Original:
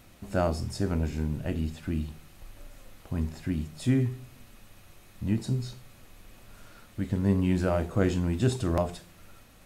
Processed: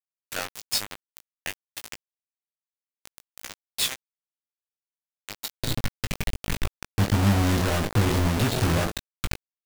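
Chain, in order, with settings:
flat-topped bell 2,700 Hz +9 dB
mains-hum notches 60/120/180/240/300/360/420/480 Hz
downward compressor 3 to 1, threshold −34 dBFS, peak gain reduction 11.5 dB
spectral tilt +3.5 dB per octave, from 0:05.60 −3 dB per octave
soft clipping −16.5 dBFS, distortion −23 dB
bit reduction 5 bits
double-tracking delay 19 ms −7 dB
level +5 dB

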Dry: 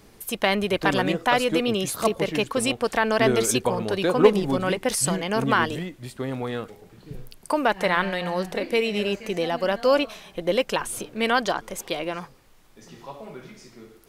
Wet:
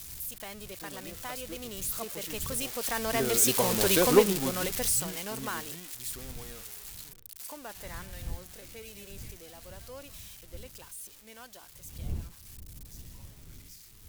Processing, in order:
spike at every zero crossing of −11 dBFS
source passing by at 0:03.89, 7 m/s, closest 2.3 metres
wind on the microphone 91 Hz −44 dBFS
level −2 dB

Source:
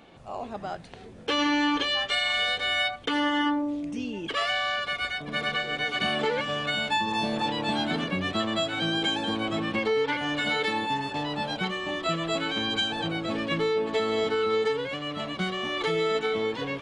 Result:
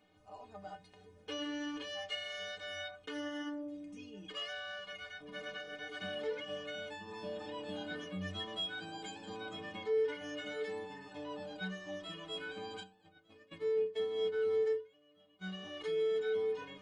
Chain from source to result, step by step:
0:12.83–0:15.44: noise gate −26 dBFS, range −21 dB
stiff-string resonator 90 Hz, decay 0.42 s, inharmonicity 0.03
level −4 dB

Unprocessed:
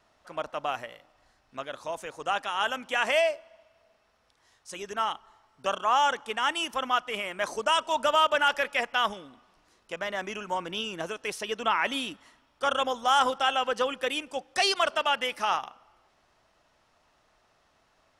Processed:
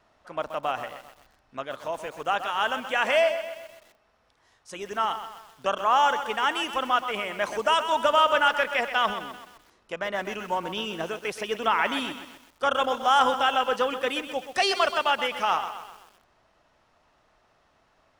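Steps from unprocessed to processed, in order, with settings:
high-shelf EQ 3,600 Hz −7 dB
feedback echo at a low word length 128 ms, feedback 55%, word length 8 bits, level −10 dB
level +3 dB

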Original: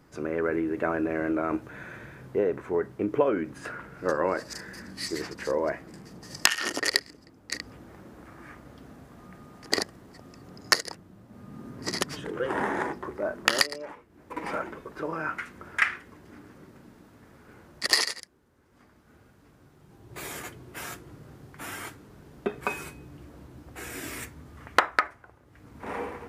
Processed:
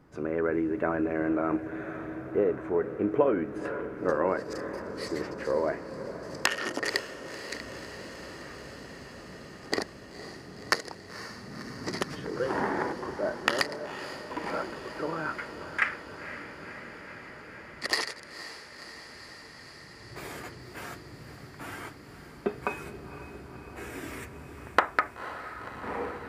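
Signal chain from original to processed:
high-shelf EQ 3,000 Hz −10.5 dB
on a send: feedback delay with all-pass diffusion 511 ms, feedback 79%, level −12.5 dB

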